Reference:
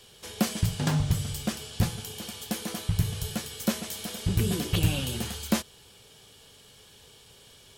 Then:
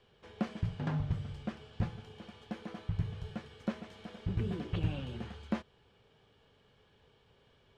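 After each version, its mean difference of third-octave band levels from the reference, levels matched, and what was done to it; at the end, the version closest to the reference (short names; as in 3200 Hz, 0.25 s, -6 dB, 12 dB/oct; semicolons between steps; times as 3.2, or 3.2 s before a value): 7.0 dB: LPF 2000 Hz 12 dB/oct; gain -8 dB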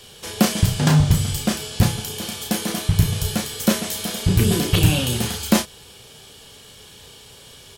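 1.0 dB: doubler 33 ms -6.5 dB; gain +8.5 dB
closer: second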